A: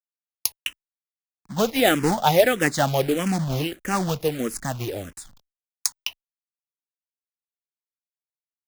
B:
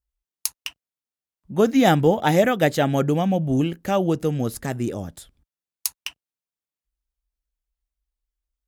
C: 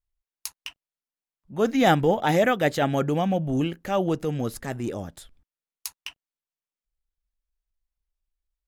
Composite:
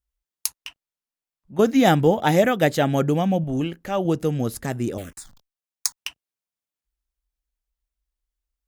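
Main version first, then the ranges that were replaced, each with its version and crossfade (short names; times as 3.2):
B
0.58–1.59 from C
3.44–4.05 from C
4.98–5.96 from A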